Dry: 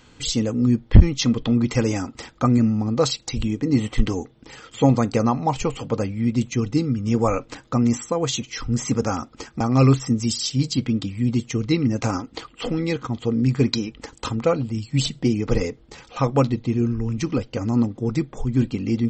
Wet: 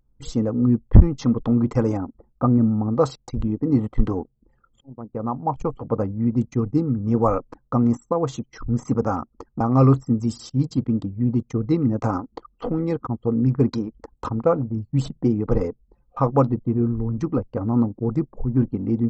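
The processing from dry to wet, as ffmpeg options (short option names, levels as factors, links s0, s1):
-filter_complex "[0:a]asplit=3[s0][s1][s2];[s0]afade=t=out:st=1.96:d=0.02[s3];[s1]lowpass=f=1100:p=1,afade=t=in:st=1.96:d=0.02,afade=t=out:st=2.7:d=0.02[s4];[s2]afade=t=in:st=2.7:d=0.02[s5];[s3][s4][s5]amix=inputs=3:normalize=0,asplit=2[s6][s7];[s6]atrim=end=4.81,asetpts=PTS-STARTPTS,afade=t=out:st=4.806:d=0.004:c=hsin[s8];[s7]atrim=start=4.81,asetpts=PTS-STARTPTS,afade=t=in:d=1.06[s9];[s8][s9]concat=n=2:v=0:a=1,anlmdn=39.8,highshelf=f=1700:t=q:w=1.5:g=-13.5"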